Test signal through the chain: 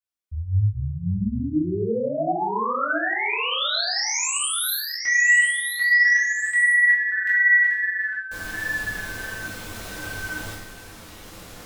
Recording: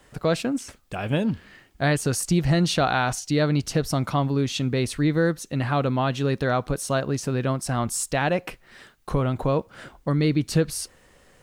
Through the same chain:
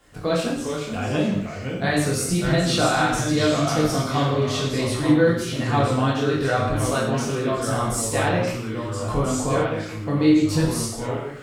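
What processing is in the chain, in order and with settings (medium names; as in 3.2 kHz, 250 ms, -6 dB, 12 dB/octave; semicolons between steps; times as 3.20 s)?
chorus 1.6 Hz, delay 19.5 ms, depth 3.2 ms; ever faster or slower copies 375 ms, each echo -2 st, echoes 2, each echo -6 dB; gated-style reverb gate 240 ms falling, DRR -3 dB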